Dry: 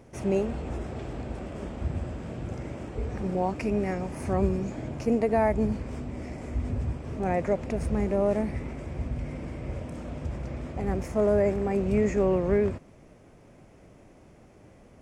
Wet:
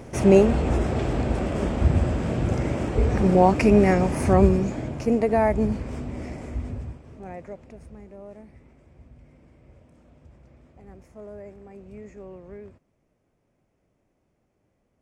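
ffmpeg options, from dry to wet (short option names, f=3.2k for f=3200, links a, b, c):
-af "volume=11dB,afade=t=out:st=4.03:d=0.91:silence=0.398107,afade=t=out:st=6.26:d=0.76:silence=0.237137,afade=t=out:st=7.02:d=1:silence=0.375837"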